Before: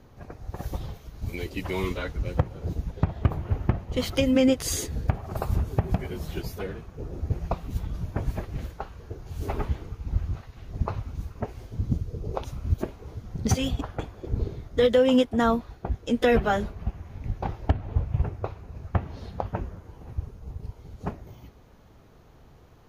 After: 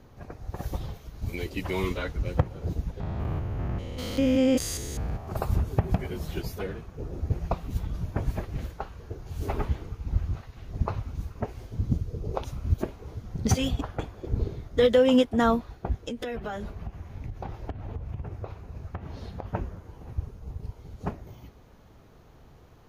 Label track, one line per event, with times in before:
3.000000	5.280000	stepped spectrum every 0.2 s
16.080000	19.500000	compressor 10:1, threshold -30 dBFS

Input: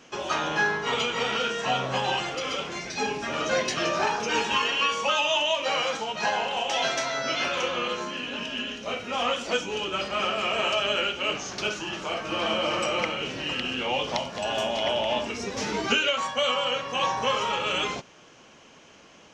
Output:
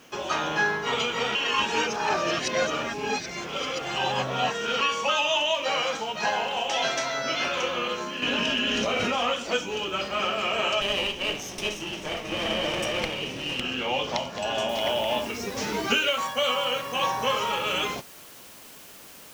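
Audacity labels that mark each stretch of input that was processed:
1.350000	4.810000	reverse
8.220000	9.250000	fast leveller amount 100%
10.810000	13.610000	minimum comb delay 0.33 ms
14.690000	14.690000	noise floor step -64 dB -48 dB

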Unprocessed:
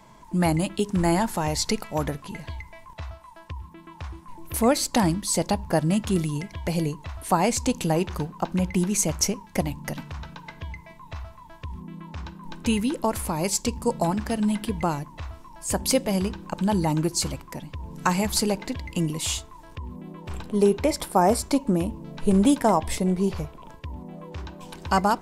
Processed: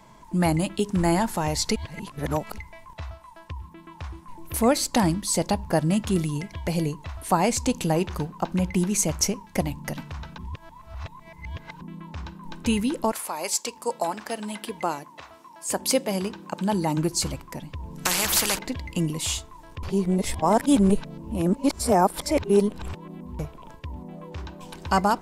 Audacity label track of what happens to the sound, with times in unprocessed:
1.760000	2.580000	reverse
10.380000	11.810000	reverse
13.110000	16.960000	HPF 650 Hz -> 160 Hz
18.050000	18.590000	spectral compressor 4:1
19.830000	23.390000	reverse

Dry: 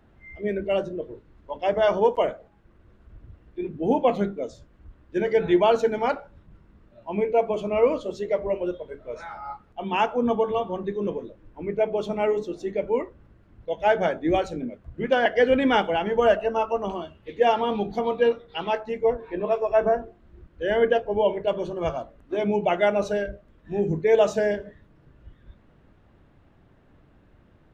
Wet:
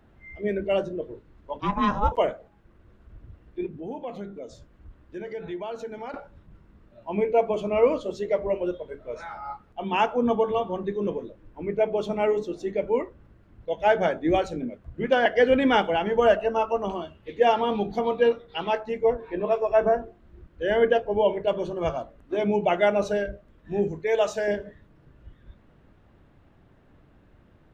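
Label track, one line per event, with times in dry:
1.600000	2.120000	ring modulator 410 Hz
3.660000	6.140000	compressor 2.5:1, threshold -38 dBFS
23.880000	24.480000	bell 200 Hz -10.5 dB 2.5 oct

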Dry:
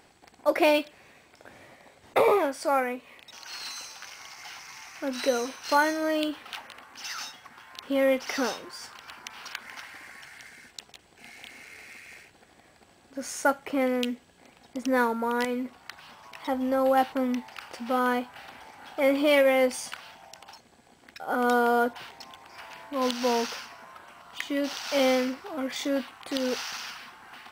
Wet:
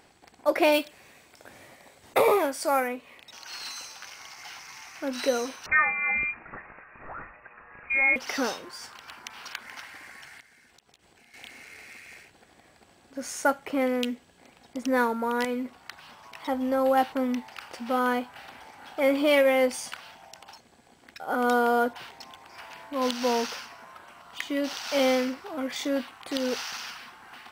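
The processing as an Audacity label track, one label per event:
0.720000	2.880000	high shelf 6200 Hz +9 dB
5.660000	8.160000	inverted band carrier 2700 Hz
10.400000	11.340000	compressor 12:1, threshold -54 dBFS

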